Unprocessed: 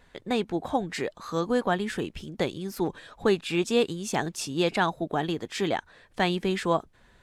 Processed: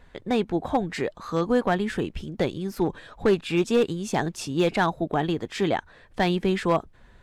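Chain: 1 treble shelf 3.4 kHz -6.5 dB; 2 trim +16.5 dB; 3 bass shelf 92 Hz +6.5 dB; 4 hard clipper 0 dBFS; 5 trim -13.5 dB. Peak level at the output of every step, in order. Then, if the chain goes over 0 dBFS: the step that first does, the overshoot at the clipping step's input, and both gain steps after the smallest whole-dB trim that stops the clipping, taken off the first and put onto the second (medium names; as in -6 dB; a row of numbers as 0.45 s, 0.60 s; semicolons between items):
-11.0 dBFS, +5.5 dBFS, +6.0 dBFS, 0.0 dBFS, -13.5 dBFS; step 2, 6.0 dB; step 2 +10.5 dB, step 5 -7.5 dB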